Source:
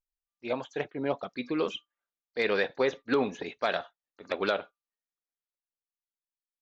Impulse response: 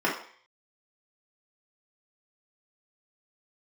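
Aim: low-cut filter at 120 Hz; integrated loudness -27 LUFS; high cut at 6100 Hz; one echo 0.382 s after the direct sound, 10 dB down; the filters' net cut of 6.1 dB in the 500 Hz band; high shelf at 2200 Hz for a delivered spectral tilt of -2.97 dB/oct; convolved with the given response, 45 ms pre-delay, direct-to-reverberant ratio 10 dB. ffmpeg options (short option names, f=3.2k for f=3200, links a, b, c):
-filter_complex "[0:a]highpass=120,lowpass=6.1k,equalizer=f=500:t=o:g=-7,highshelf=f=2.2k:g=-6,aecho=1:1:382:0.316,asplit=2[a][b];[1:a]atrim=start_sample=2205,adelay=45[c];[b][c]afir=irnorm=-1:irlink=0,volume=-23.5dB[d];[a][d]amix=inputs=2:normalize=0,volume=8.5dB"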